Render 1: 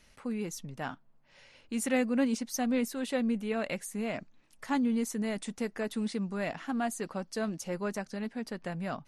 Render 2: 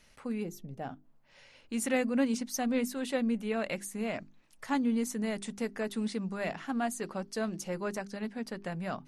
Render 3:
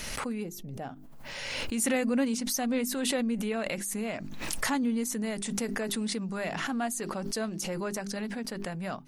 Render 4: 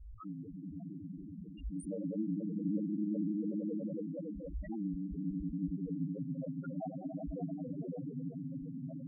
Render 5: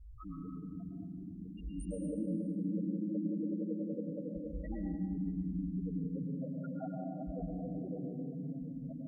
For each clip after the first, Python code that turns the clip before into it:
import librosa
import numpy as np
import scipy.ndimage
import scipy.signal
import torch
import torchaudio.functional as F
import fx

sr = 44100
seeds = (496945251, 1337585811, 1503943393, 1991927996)

y1 = fx.spec_box(x, sr, start_s=0.44, length_s=0.6, low_hz=820.0, high_hz=12000.0, gain_db=-10)
y1 = fx.hum_notches(y1, sr, base_hz=50, count=8)
y2 = fx.high_shelf(y1, sr, hz=6000.0, db=7.0)
y2 = fx.pre_swell(y2, sr, db_per_s=24.0)
y3 = fx.echo_swell(y2, sr, ms=93, loudest=5, wet_db=-5.0)
y3 = y3 * np.sin(2.0 * np.pi * 52.0 * np.arange(len(y3)) / sr)
y3 = fx.spec_topn(y3, sr, count=2)
y3 = y3 * 10.0 ** (-1.5 / 20.0)
y4 = fx.rev_plate(y3, sr, seeds[0], rt60_s=1.3, hf_ratio=0.95, predelay_ms=100, drr_db=-0.5)
y4 = y4 * 10.0 ** (-2.0 / 20.0)